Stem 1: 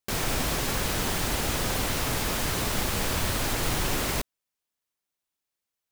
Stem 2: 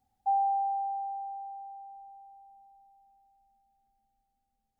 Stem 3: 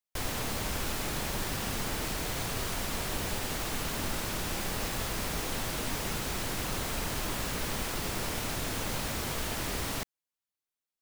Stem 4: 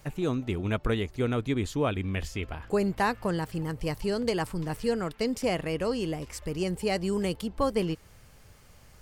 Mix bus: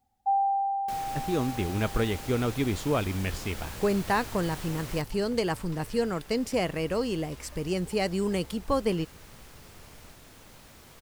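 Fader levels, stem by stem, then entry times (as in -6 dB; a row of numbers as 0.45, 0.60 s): -13.5, +2.0, -18.0, +0.5 dB; 0.80, 0.00, 1.60, 1.10 s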